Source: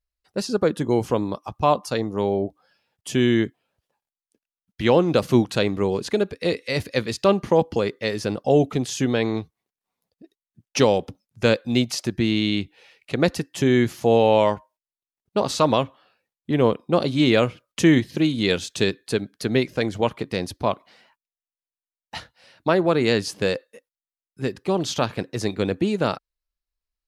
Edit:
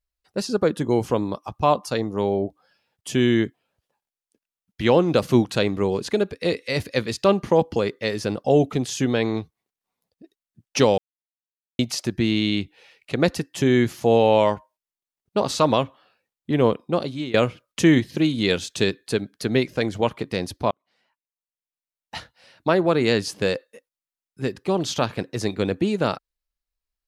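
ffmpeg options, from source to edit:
-filter_complex "[0:a]asplit=5[a][b][c][d][e];[a]atrim=end=10.98,asetpts=PTS-STARTPTS,afade=t=out:st=10.976:d=0.004:c=hsin[f];[b]atrim=start=10.98:end=11.79,asetpts=PTS-STARTPTS,volume=0[g];[c]atrim=start=11.79:end=17.34,asetpts=PTS-STARTPTS,afade=t=in:d=0.004:c=hsin,afade=t=out:st=4.98:d=0.57:silence=0.105925[h];[d]atrim=start=17.34:end=20.71,asetpts=PTS-STARTPTS,afade=t=in:d=0.004:c=hsin:silence=0.105925,afade=t=out:st=3.366:d=0.004:c=hsin[i];[e]atrim=start=20.71,asetpts=PTS-STARTPTS,afade=t=in:d=1.44[j];[f][g][h][i][j]concat=n=5:v=0:a=1"

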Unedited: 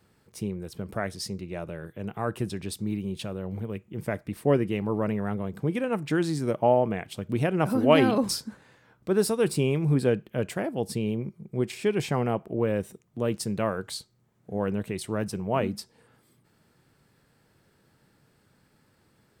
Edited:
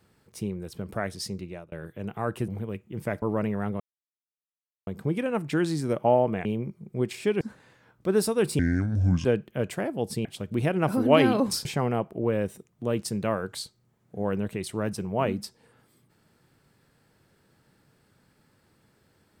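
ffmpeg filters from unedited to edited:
-filter_complex "[0:a]asplit=11[a][b][c][d][e][f][g][h][i][j][k];[a]atrim=end=1.72,asetpts=PTS-STARTPTS,afade=t=out:st=1.44:d=0.28[l];[b]atrim=start=1.72:end=2.482,asetpts=PTS-STARTPTS,afade=t=in:d=0.004:c=hsin[m];[c]atrim=start=3.488:end=4.232[n];[d]atrim=start=4.868:end=5.45,asetpts=PTS-STARTPTS,afade=t=out:st=0.578:d=0.004:c=hsin,apad=pad_dur=1.07[o];[e]atrim=start=5.45:end=7.032,asetpts=PTS-STARTPTS,afade=t=in:d=0.004:c=hsin[p];[f]atrim=start=11.038:end=12.002[q];[g]atrim=start=8.428:end=9.614[r];[h]atrim=start=9.61:end=10.04,asetpts=PTS-STARTPTS,asetrate=28665,aresample=44100[s];[i]atrim=start=10.036:end=11.042[t];[j]atrim=start=7.028:end=8.432[u];[k]atrim=start=11.998[v];[l][m]concat=n=2:v=0:a=1[w];[w][n]acrossfade=d=0.004:c1=hsin:c2=hsin[x];[o][p]concat=n=2:v=0:a=1[y];[x][y]acrossfade=d=0.004:c1=hsin:c2=hsin[z];[z][q]acrossfade=d=0.004:c1=hsin:c2=hsin[aa];[aa][r]acrossfade=d=0.004:c1=hsin:c2=hsin[ab];[ab][s]acrossfade=d=0.004:c1=hsin:c2=hsin[ac];[ac][t]acrossfade=d=0.004:c1=hsin:c2=hsin[ad];[ad][u]acrossfade=d=0.004:c1=hsin:c2=hsin[ae];[ae][v]acrossfade=d=0.004:c1=hsin:c2=hsin"

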